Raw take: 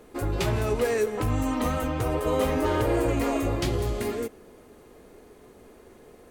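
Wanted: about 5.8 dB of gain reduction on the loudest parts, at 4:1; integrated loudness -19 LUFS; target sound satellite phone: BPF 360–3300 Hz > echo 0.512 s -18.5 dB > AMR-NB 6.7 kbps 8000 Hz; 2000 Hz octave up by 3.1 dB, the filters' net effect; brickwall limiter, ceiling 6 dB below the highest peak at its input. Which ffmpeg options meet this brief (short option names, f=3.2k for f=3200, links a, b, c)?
-af "equalizer=f=2k:t=o:g=4.5,acompressor=threshold=-27dB:ratio=4,alimiter=limit=-23.5dB:level=0:latency=1,highpass=360,lowpass=3.3k,aecho=1:1:512:0.119,volume=18.5dB" -ar 8000 -c:a libopencore_amrnb -b:a 6700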